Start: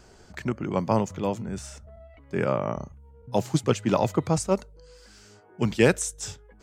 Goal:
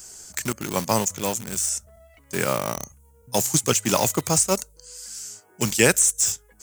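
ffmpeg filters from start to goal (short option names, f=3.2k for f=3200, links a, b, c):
-filter_complex "[0:a]highshelf=f=5.3k:t=q:w=1.5:g=7.5,asplit=2[a][b];[b]aeval=exprs='val(0)*gte(abs(val(0)),0.0422)':c=same,volume=-5.5dB[c];[a][c]amix=inputs=2:normalize=0,crystalizer=i=8.5:c=0,acrossover=split=3100[d][e];[e]acompressor=threshold=-12dB:ratio=4:attack=1:release=60[f];[d][f]amix=inputs=2:normalize=0,volume=-5dB"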